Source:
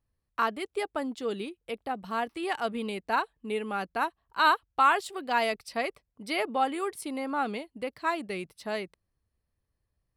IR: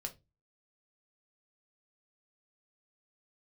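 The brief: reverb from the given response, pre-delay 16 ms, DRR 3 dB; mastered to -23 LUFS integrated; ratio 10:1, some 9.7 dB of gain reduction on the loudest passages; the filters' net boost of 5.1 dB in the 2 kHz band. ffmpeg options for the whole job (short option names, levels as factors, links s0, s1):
-filter_complex "[0:a]equalizer=f=2000:t=o:g=7,acompressor=threshold=0.0631:ratio=10,asplit=2[s0][s1];[1:a]atrim=start_sample=2205,adelay=16[s2];[s1][s2]afir=irnorm=-1:irlink=0,volume=0.891[s3];[s0][s3]amix=inputs=2:normalize=0,volume=2.24"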